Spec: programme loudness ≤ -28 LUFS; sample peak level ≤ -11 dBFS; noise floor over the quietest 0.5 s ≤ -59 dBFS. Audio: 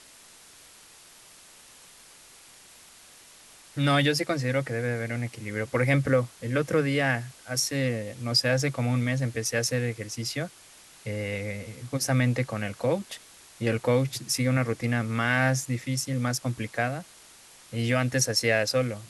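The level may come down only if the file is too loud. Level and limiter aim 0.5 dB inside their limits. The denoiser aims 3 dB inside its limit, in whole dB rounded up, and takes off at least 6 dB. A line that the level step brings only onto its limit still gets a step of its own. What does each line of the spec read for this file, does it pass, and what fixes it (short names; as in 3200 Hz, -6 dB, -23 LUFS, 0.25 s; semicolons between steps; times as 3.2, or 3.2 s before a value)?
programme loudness -27.0 LUFS: fail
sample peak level -9.5 dBFS: fail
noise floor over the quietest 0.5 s -52 dBFS: fail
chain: denoiser 9 dB, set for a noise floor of -52 dBFS; gain -1.5 dB; limiter -11.5 dBFS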